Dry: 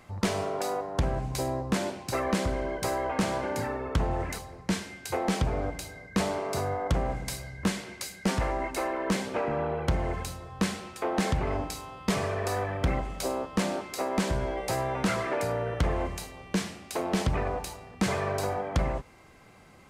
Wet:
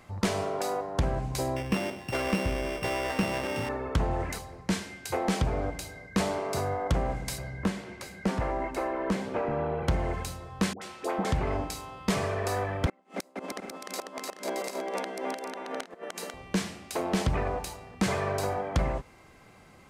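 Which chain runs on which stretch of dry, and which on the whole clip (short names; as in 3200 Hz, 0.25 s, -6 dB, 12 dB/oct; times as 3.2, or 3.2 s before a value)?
1.56–3.69 sample sorter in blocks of 16 samples + LPF 3600 Hz 6 dB/oct
7.38–9.83 high shelf 2400 Hz -10 dB + three-band squash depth 40%
10.73–11.25 low shelf 180 Hz -10 dB + dispersion highs, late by 86 ms, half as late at 850 Hz
12.86–16.34 steep high-pass 180 Hz 96 dB/oct + flipped gate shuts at -21 dBFS, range -32 dB + bouncing-ball echo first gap 0.3 s, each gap 0.65×, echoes 7, each echo -2 dB
whole clip: dry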